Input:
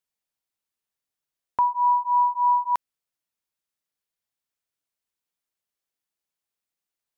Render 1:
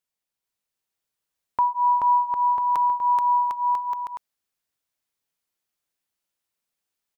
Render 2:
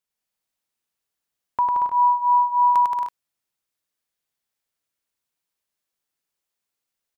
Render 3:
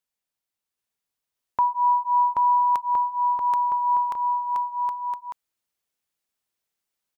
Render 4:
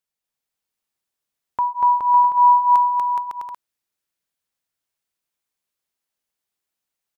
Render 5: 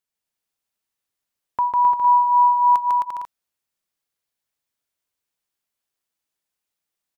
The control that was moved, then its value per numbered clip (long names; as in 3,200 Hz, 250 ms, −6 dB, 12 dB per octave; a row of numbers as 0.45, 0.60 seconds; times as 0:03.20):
bouncing-ball delay, first gap: 430, 100, 780, 240, 150 milliseconds